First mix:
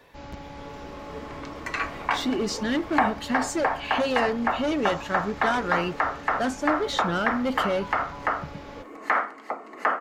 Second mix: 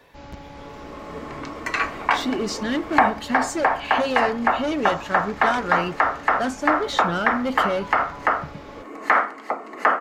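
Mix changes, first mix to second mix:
speech: send +6.5 dB; second sound +5.5 dB

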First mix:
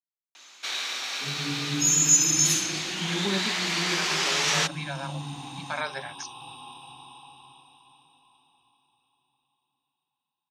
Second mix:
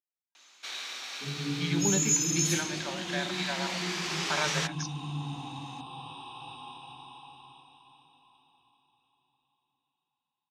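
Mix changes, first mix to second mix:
speech: entry -1.40 s; first sound -7.5 dB; second sound: add air absorption 86 m

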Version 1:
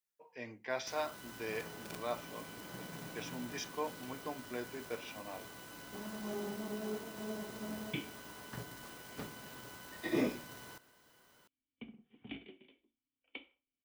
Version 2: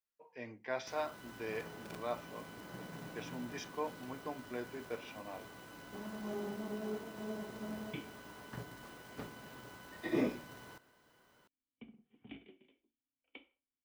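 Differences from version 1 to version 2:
second sound -4.0 dB; master: add high shelf 3400 Hz -8 dB

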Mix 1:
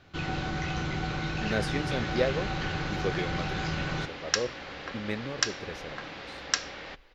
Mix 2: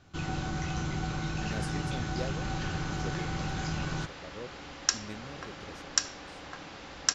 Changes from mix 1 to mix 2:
speech -7.0 dB; second sound: entry +0.55 s; master: add graphic EQ 500/2000/4000/8000 Hz -5/-6/-5/+9 dB

